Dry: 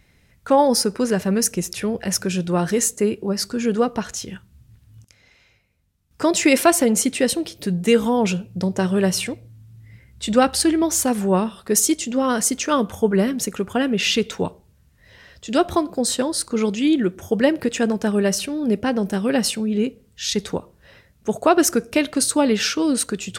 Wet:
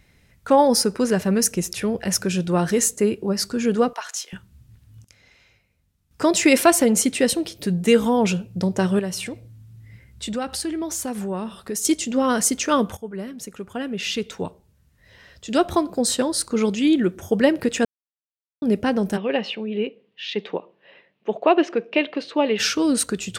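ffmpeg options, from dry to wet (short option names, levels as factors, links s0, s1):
-filter_complex "[0:a]asettb=1/sr,asplit=3[s0][s1][s2];[s0]atrim=end=3.934[s3];[s1]atrim=start=3.93:end=4.33,asetpts=PTS-STARTPTS,afade=t=in:d=0.004:c=qsin,afade=t=out:st=0.396:d=0.004:c=qsin,highpass=f=740:w=0.5412,highpass=f=740:w=1.3066[s4];[s2]atrim=start=4.326[s5];[s3][s4]acrossfade=d=0.004:c1=hsin:c2=qsin[s6];[s6][s5]acrossfade=d=0.004:c1=qsin:c2=hsin,asettb=1/sr,asplit=3[s7][s8][s9];[s7]atrim=end=8.994[s10];[s8]atrim=start=8.99:end=11.85,asetpts=PTS-STARTPTS,afade=t=in:d=0.004:c=qsin,afade=t=out:st=2.856:d=0.004:c=qsin,acompressor=threshold=0.0398:ratio=2.5:attack=3.2:release=140:knee=1:detection=peak[s11];[s9]atrim=start=11.846[s12];[s10][s11]acrossfade=d=0.004:c1=hsin:c2=qsin[s13];[s13][s12]acrossfade=d=0.004:c1=qsin:c2=hsin,asplit=3[s14][s15][s16];[s14]afade=t=out:st=19.16:d=0.02[s17];[s15]highpass=f=220:w=0.5412,highpass=f=220:w=1.3066,equalizer=f=250:t=q:w=4:g=-9,equalizer=f=1400:t=q:w=4:g=-9,equalizer=f=2800:t=q:w=4:g=5,lowpass=f=3200:w=0.5412,lowpass=f=3200:w=1.3066,afade=t=in:st=19.16:d=0.02,afade=t=out:st=22.58:d=0.02[s18];[s16]afade=t=in:st=22.58:d=0.02[s19];[s17][s18][s19]amix=inputs=3:normalize=0,asplit=4[s20][s21][s22][s23];[s20]atrim=end=12.97,asetpts=PTS-STARTPTS,afade=t=out:st=12.966:d=0.004:c=hsin:silence=0.149624[s24];[s21]atrim=start=12.97:end=17.85,asetpts=PTS-STARTPTS,afade=t=in:d=3.01:silence=0.149624,afade=t=out:st=4.876:d=0.004:c=hsin[s25];[s22]atrim=start=17.85:end=18.62,asetpts=PTS-STARTPTS,volume=0[s26];[s23]atrim=start=18.62,asetpts=PTS-STARTPTS,afade=t=in:d=0.004:c=hsin[s27];[s24][s25][s26][s27]concat=n=4:v=0:a=1"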